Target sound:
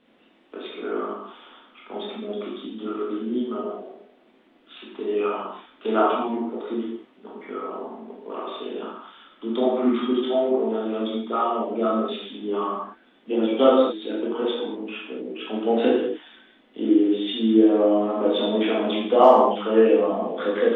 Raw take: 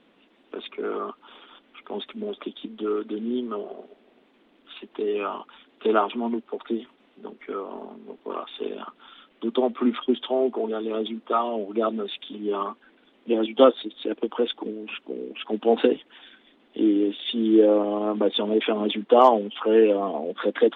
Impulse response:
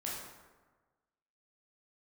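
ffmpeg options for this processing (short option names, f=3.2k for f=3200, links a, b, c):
-filter_complex "[1:a]atrim=start_sample=2205,afade=t=out:st=0.29:d=0.01,atrim=end_sample=13230[a];[0:a][a]afir=irnorm=-1:irlink=0"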